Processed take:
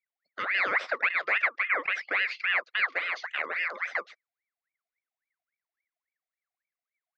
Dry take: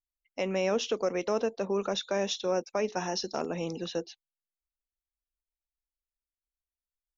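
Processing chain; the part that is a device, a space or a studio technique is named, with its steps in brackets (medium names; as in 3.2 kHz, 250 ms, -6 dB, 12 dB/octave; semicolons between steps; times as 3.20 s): 1.47–3.41 s: distance through air 80 m; voice changer toy (ring modulator with a swept carrier 1.5 kHz, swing 55%, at 3.6 Hz; cabinet simulation 530–3900 Hz, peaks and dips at 530 Hz +4 dB, 900 Hz -9 dB, 2.1 kHz +9 dB, 3.1 kHz -6 dB); trim +3 dB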